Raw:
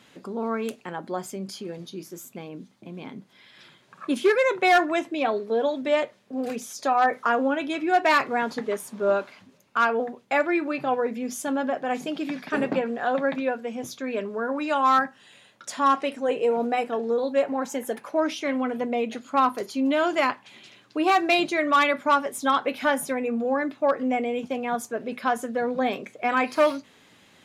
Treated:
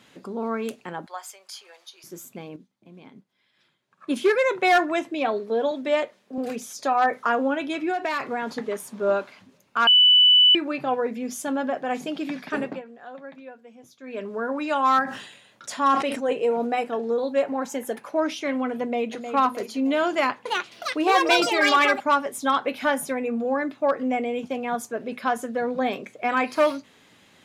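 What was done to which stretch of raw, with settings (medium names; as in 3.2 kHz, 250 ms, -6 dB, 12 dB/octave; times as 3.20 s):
1.06–2.04 s: high-pass 770 Hz 24 dB/octave
2.56–4.14 s: upward expansion, over -56 dBFS
5.71–6.38 s: high-pass 190 Hz
7.90–8.93 s: compression, threshold -22 dBFS
9.87–10.55 s: bleep 2.98 kHz -11.5 dBFS
12.49–14.33 s: dip -16 dB, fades 0.35 s
15.03–16.33 s: decay stretcher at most 67 dB/s
18.82–19.32 s: echo throw 310 ms, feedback 50%, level -8.5 dB
20.09–22.28 s: ever faster or slower copies 364 ms, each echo +6 st, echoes 2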